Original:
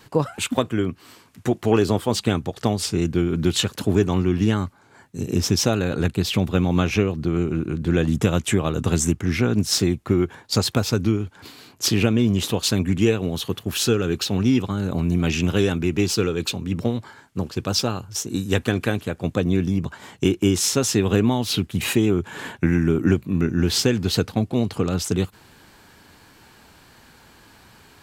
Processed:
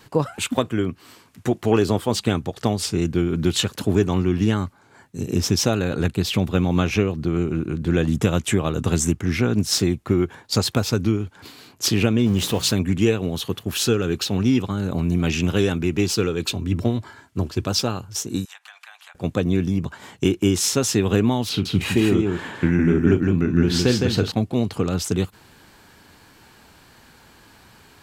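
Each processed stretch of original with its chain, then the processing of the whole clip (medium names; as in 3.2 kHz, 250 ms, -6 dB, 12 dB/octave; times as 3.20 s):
12.26–12.74 s: jump at every zero crossing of -31.5 dBFS + de-hum 58.97 Hz, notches 3 + tape noise reduction on one side only decoder only
16.46–17.68 s: high-pass 41 Hz + peaking EQ 83 Hz +6 dB 1.9 oct + comb 3 ms, depth 34%
18.45–19.15 s: steep high-pass 770 Hz 48 dB/octave + treble shelf 10 kHz -10.5 dB + compression 4:1, threshold -42 dBFS
21.49–24.32 s: treble shelf 6.9 kHz -11.5 dB + doubling 40 ms -12.5 dB + delay 161 ms -3.5 dB
whole clip: none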